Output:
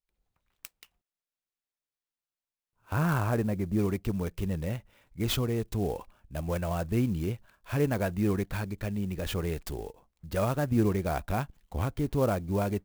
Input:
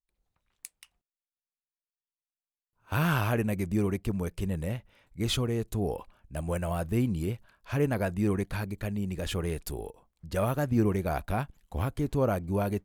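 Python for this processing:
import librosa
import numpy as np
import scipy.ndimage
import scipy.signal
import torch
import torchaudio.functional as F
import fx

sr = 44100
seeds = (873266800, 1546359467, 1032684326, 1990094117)

y = fx.lowpass(x, sr, hz=1600.0, slope=12, at=(2.93, 3.79))
y = fx.clock_jitter(y, sr, seeds[0], jitter_ms=0.026)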